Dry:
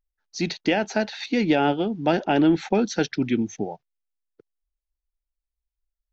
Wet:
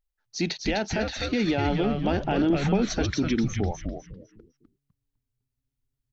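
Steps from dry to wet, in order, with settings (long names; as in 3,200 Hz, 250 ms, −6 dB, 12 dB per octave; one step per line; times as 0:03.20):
brickwall limiter −16.5 dBFS, peak gain reduction 7 dB
echo with shifted repeats 252 ms, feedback 30%, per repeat −140 Hz, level −4 dB
0:02.50–0:02.90: multiband upward and downward compressor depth 70%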